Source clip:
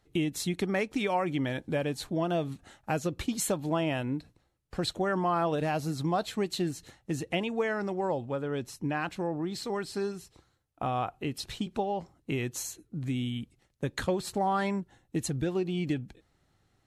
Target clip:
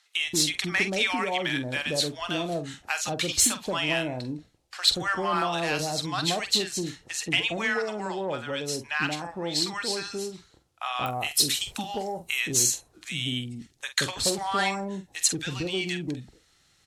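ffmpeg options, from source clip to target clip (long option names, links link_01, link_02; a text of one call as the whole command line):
ffmpeg -i in.wav -filter_complex "[0:a]asetnsamples=nb_out_samples=441:pad=0,asendcmd='11.06 lowpass f 12000;12.4 lowpass f 6000',lowpass=5000,aemphasis=mode=production:type=75fm,asplit=2[link_01][link_02];[link_02]adelay=47,volume=-11dB[link_03];[link_01][link_03]amix=inputs=2:normalize=0,acrossover=split=830[link_04][link_05];[link_04]adelay=180[link_06];[link_06][link_05]amix=inputs=2:normalize=0,asoftclip=type=tanh:threshold=-18.5dB,tiltshelf=frequency=880:gain=-6,volume=4.5dB" out.wav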